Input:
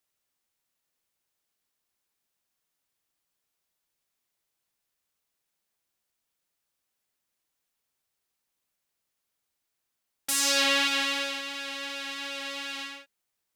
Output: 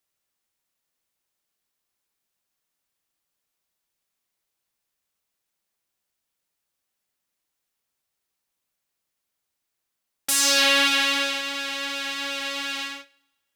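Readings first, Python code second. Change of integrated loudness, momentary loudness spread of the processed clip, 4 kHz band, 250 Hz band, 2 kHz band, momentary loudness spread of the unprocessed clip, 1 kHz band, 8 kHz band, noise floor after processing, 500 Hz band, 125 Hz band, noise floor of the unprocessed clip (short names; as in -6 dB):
+5.5 dB, 14 LU, +5.5 dB, +4.5 dB, +6.0 dB, 15 LU, +5.5 dB, +5.5 dB, -81 dBFS, +4.5 dB, n/a, -82 dBFS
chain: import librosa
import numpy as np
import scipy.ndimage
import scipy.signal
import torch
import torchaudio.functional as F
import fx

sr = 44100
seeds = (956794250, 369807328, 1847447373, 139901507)

y = fx.rev_double_slope(x, sr, seeds[0], early_s=0.62, late_s=1.6, knee_db=-18, drr_db=12.0)
y = fx.leveller(y, sr, passes=1)
y = y * librosa.db_to_amplitude(2.5)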